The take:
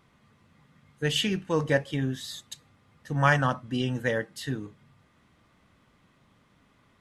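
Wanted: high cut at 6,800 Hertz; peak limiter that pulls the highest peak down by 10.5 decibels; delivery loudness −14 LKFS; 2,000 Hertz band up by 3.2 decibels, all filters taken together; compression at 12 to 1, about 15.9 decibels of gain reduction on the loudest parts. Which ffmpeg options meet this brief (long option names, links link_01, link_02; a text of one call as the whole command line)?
ffmpeg -i in.wav -af "lowpass=6800,equalizer=frequency=2000:width_type=o:gain=4,acompressor=threshold=-31dB:ratio=12,volume=26.5dB,alimiter=limit=-3dB:level=0:latency=1" out.wav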